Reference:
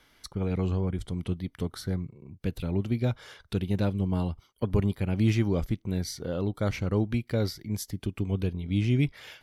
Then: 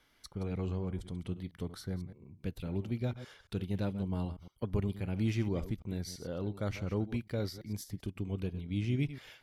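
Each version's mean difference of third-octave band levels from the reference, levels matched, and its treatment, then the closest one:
1.5 dB: delay that plays each chunk backwards 112 ms, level −13 dB
de-essing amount 60%
level −7.5 dB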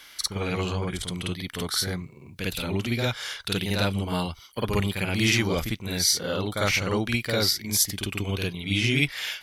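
9.0 dB: tilt shelving filter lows −9.5 dB, about 900 Hz
on a send: backwards echo 51 ms −4 dB
on the sum: level +6.5 dB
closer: first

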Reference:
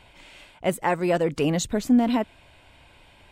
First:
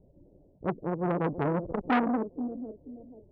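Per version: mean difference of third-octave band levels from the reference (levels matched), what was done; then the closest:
10.5 dB: spectral magnitudes quantised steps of 30 dB
Butterworth low-pass 520 Hz 36 dB per octave
on a send: feedback echo with a high-pass in the loop 483 ms, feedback 41%, high-pass 340 Hz, level −9 dB
on the sum: saturating transformer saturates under 1,200 Hz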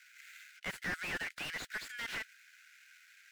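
13.5 dB: running median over 15 samples
in parallel at +2 dB: output level in coarse steps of 23 dB
on the sum: Butterworth high-pass 1,400 Hz 96 dB per octave
slew-rate limiting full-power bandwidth 22 Hz
level +3 dB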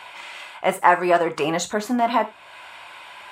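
6.0 dB: high-pass filter 420 Hz 6 dB per octave
parametric band 1,100 Hz +13 dB 1.6 octaves
reverb whose tail is shaped and stops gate 110 ms falling, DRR 6.5 dB
one half of a high-frequency compander encoder only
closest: third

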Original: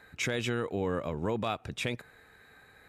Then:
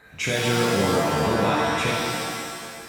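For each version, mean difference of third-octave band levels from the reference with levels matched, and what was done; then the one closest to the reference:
12.5 dB: reverb with rising layers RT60 1.8 s, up +7 semitones, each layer −2 dB, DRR −3.5 dB
level +3 dB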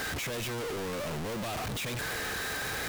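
16.5 dB: sign of each sample alone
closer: first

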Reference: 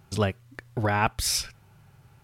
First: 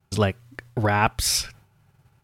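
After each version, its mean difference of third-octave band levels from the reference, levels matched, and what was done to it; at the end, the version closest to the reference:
2.0 dB: downward expander −47 dBFS
level +3.5 dB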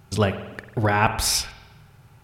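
4.0 dB: spring reverb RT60 1.1 s, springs 46 ms, chirp 70 ms, DRR 9 dB
level +4 dB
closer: first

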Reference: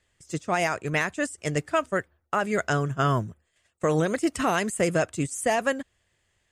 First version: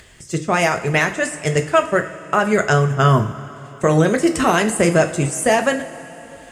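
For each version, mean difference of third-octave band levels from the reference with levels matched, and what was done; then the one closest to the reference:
4.5 dB: upward compression, threshold −42 dBFS
coupled-rooms reverb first 0.37 s, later 4 s, from −18 dB, DRR 5.5 dB
level +7.5 dB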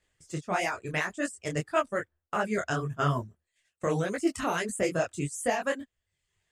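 3.5 dB: reverb reduction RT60 0.7 s
micro pitch shift up and down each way 58 cents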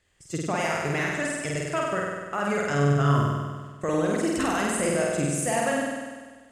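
8.5 dB: brickwall limiter −19.5 dBFS, peak gain reduction 6.5 dB
flutter between parallel walls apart 8.4 metres, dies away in 1.5 s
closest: second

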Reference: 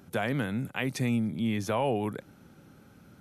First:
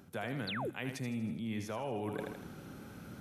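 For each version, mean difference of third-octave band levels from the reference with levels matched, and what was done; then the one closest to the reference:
7.0 dB: feedback echo with a high-pass in the loop 80 ms, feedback 47%, high-pass 190 Hz, level −8.5 dB
sound drawn into the spectrogram fall, 0:00.47–0:00.70, 290–4,900 Hz −29 dBFS
reversed playback
downward compressor 6 to 1, threshold −42 dBFS, peak gain reduction 17.5 dB
reversed playback
level +5.5 dB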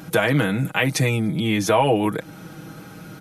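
4.0 dB: low-shelf EQ 270 Hz −4 dB
comb filter 6.3 ms, depth 80%
in parallel at +3 dB: downward compressor, threshold −41 dBFS, peak gain reduction 16.5 dB
on the sum: level +8 dB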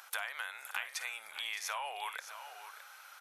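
19.0 dB: inverse Chebyshev high-pass filter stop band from 270 Hz, stop band 60 dB
downward compressor 6 to 1, threshold −47 dBFS, peak gain reduction 18 dB
on a send: multi-tap delay 53/578/614 ms −16.5/−17.5/−11.5 dB
on the sum: level +10.5 dB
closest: second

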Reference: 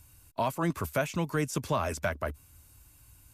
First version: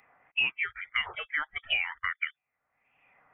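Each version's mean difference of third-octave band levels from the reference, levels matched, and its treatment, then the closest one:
17.5 dB: noise reduction from a noise print of the clip's start 25 dB
auto-filter high-pass sine 1.6 Hz 830–2,000 Hz
voice inversion scrambler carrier 3,500 Hz
multiband upward and downward compressor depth 100%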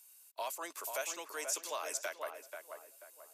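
12.5 dB: parametric band 1,200 Hz −10 dB 2.8 octaves
feedback echo with a low-pass in the loop 486 ms, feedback 38%, low-pass 1,800 Hz, level −5.5 dB
dynamic equaliser 6,800 Hz, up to +5 dB, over −56 dBFS, Q 2.2
Bessel high-pass filter 770 Hz, order 6
level +1.5 dB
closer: second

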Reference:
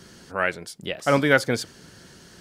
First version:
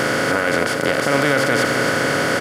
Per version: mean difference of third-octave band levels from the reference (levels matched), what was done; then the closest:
15.0 dB: compressor on every frequency bin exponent 0.2
high-shelf EQ 11,000 Hz +4.5 dB
brickwall limiter −6 dBFS, peak gain reduction 7 dB
on a send: single-tap delay 267 ms −9.5 dB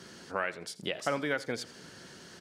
6.5 dB: downward compressor 6 to 1, threshold −28 dBFS, peak gain reduction 15 dB
high-pass filter 220 Hz 6 dB per octave
high-shelf EQ 11,000 Hz −11.5 dB
repeating echo 83 ms, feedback 36%, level −18.5 dB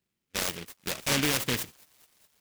11.5 dB: noise gate −36 dBFS, range −34 dB
brickwall limiter −15 dBFS, peak gain reduction 11 dB
delay with a high-pass on its return 209 ms, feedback 75%, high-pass 2,500 Hz, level −24 dB
short delay modulated by noise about 2,400 Hz, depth 0.36 ms
level −1.5 dB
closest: second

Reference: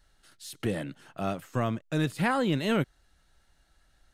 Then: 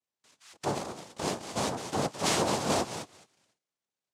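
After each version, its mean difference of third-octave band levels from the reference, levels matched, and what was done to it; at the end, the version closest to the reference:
10.5 dB: band-pass filter 230–2,800 Hz
on a send: feedback echo with a high-pass in the loop 213 ms, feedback 16%, high-pass 530 Hz, level −7 dB
on the sum: cochlear-implant simulation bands 2
noise gate with hold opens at −59 dBFS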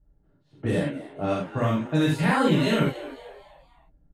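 7.5 dB: low-pass that shuts in the quiet parts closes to 360 Hz, open at −24 dBFS
brickwall limiter −19.5 dBFS, peak gain reduction 3.5 dB
on a send: echo with shifted repeats 244 ms, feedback 44%, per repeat +130 Hz, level −16.5 dB
on the sum: reverb whose tail is shaped and stops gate 110 ms flat, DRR −5.5 dB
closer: second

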